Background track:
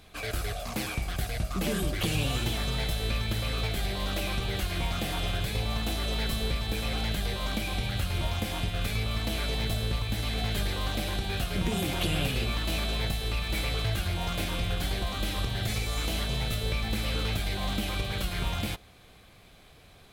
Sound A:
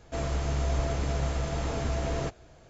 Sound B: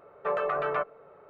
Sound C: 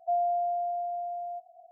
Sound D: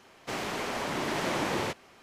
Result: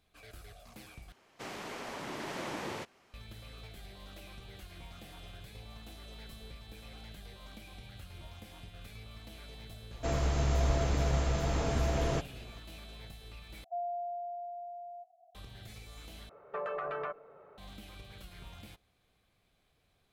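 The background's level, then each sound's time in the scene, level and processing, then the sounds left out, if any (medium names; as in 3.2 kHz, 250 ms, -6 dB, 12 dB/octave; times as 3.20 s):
background track -19 dB
1.12 s: replace with D -9 dB
9.91 s: add A -0.5 dB
13.64 s: replace with C -9.5 dB
16.29 s: replace with B -3 dB + compression, threshold -30 dBFS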